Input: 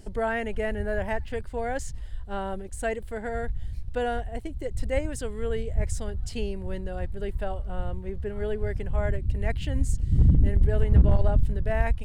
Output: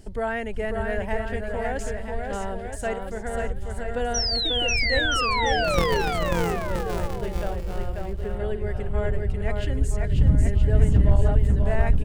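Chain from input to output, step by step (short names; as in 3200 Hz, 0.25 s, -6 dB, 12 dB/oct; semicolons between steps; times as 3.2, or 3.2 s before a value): 5.64–6.54 sample sorter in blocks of 256 samples; 4.14–6.02 painted sound fall 380–6000 Hz -26 dBFS; bouncing-ball echo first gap 0.54 s, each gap 0.8×, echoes 5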